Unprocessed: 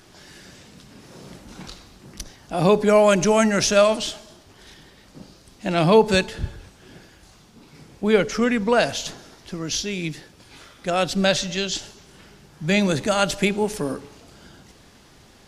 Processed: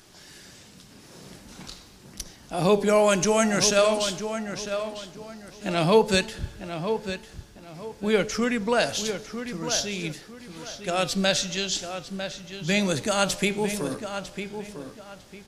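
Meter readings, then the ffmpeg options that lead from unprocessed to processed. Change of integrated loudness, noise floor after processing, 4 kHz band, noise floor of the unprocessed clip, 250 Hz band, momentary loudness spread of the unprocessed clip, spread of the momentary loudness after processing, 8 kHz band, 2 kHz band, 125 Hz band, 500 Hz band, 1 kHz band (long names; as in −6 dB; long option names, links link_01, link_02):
−4.5 dB, −50 dBFS, −1.0 dB, −51 dBFS, −4.0 dB, 19 LU, 20 LU, +0.5 dB, −2.5 dB, −4.0 dB, −3.5 dB, −3.5 dB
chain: -filter_complex "[0:a]highshelf=frequency=4000:gain=7,flanger=delay=4.3:depth=8.5:regen=88:speed=0.48:shape=triangular,asplit=2[link_01][link_02];[link_02]adelay=951,lowpass=frequency=3300:poles=1,volume=-8.5dB,asplit=2[link_03][link_04];[link_04]adelay=951,lowpass=frequency=3300:poles=1,volume=0.29,asplit=2[link_05][link_06];[link_06]adelay=951,lowpass=frequency=3300:poles=1,volume=0.29[link_07];[link_01][link_03][link_05][link_07]amix=inputs=4:normalize=0"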